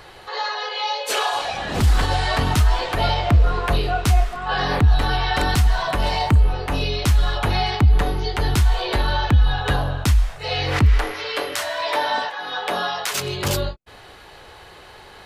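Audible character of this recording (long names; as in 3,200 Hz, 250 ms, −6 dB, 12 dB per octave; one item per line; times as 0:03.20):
background noise floor −44 dBFS
spectral slope −5.0 dB per octave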